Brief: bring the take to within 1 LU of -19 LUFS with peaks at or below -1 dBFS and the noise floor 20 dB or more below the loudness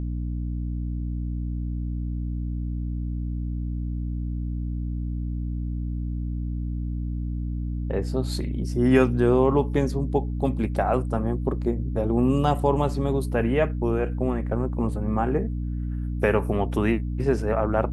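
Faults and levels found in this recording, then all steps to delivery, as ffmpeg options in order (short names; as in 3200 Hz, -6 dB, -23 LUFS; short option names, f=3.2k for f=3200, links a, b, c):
hum 60 Hz; harmonics up to 300 Hz; hum level -26 dBFS; loudness -26.0 LUFS; peak -5.5 dBFS; loudness target -19.0 LUFS
-> -af "bandreject=f=60:t=h:w=6,bandreject=f=120:t=h:w=6,bandreject=f=180:t=h:w=6,bandreject=f=240:t=h:w=6,bandreject=f=300:t=h:w=6"
-af "volume=7dB,alimiter=limit=-1dB:level=0:latency=1"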